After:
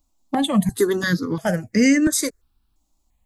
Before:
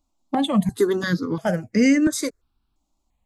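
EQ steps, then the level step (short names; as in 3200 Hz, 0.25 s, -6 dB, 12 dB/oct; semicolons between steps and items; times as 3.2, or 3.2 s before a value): low shelf 100 Hz +6 dB; bell 1800 Hz +5 dB 0.27 oct; high shelf 6200 Hz +11 dB; 0.0 dB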